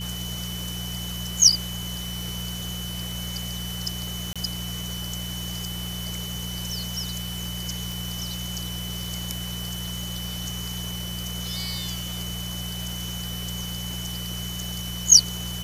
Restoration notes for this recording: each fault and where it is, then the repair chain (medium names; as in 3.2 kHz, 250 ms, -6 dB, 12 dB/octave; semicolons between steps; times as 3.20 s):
crackle 41 per s -36 dBFS
hum 60 Hz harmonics 3 -34 dBFS
whine 3 kHz -35 dBFS
4.33–4.36 s: dropout 26 ms
7.92 s: pop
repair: de-click; band-stop 3 kHz, Q 30; de-hum 60 Hz, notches 3; interpolate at 4.33 s, 26 ms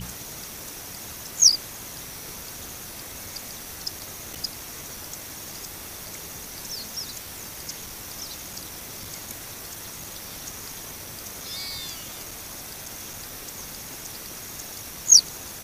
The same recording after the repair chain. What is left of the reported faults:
nothing left